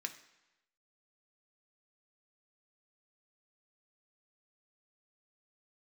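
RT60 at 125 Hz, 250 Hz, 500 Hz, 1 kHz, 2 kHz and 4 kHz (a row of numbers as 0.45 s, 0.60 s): 0.95 s, 0.90 s, 0.95 s, 1.0 s, 1.0 s, 0.95 s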